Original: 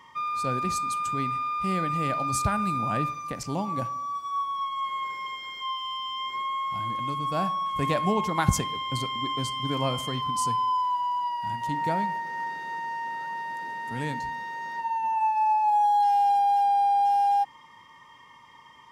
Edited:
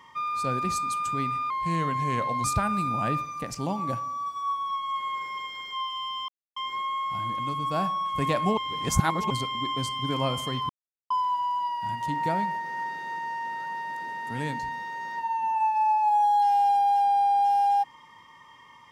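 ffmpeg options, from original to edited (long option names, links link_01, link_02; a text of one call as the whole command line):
ffmpeg -i in.wav -filter_complex "[0:a]asplit=8[link_01][link_02][link_03][link_04][link_05][link_06][link_07][link_08];[link_01]atrim=end=1.504[link_09];[link_02]atrim=start=1.5:end=2.33,asetpts=PTS-STARTPTS,asetrate=38808,aresample=44100,atrim=end_sample=41594,asetpts=PTS-STARTPTS[link_10];[link_03]atrim=start=2.326:end=6.17,asetpts=PTS-STARTPTS,afade=type=out:start_time=3.84:duration=0.004:curve=hsin,apad=pad_dur=0.28[link_11];[link_04]atrim=start=6.17:end=8.182,asetpts=PTS-STARTPTS,afade=type=in:duration=0.004:curve=hsin[link_12];[link_05]atrim=start=8.178:end=8.912,asetpts=PTS-STARTPTS,areverse[link_13];[link_06]atrim=start=8.908:end=10.3,asetpts=PTS-STARTPTS,afade=type=out:start_time=1.388:duration=0.004:curve=hsin[link_14];[link_07]atrim=start=10.3:end=10.71,asetpts=PTS-STARTPTS,volume=0[link_15];[link_08]atrim=start=10.71,asetpts=PTS-STARTPTS,afade=type=in:duration=0.004:curve=hsin[link_16];[link_09][link_10]acrossfade=duration=0.004:curve1=hsin:curve2=hsin[link_17];[link_11][link_12]concat=n=2:v=0:a=1[link_18];[link_17][link_18]acrossfade=duration=0.004:curve1=hsin:curve2=hsin[link_19];[link_19][link_13]acrossfade=duration=0.004:curve1=hsin:curve2=hsin[link_20];[link_14][link_15][link_16]concat=n=3:v=0:a=1[link_21];[link_20][link_21]acrossfade=duration=0.004:curve1=hsin:curve2=hsin" out.wav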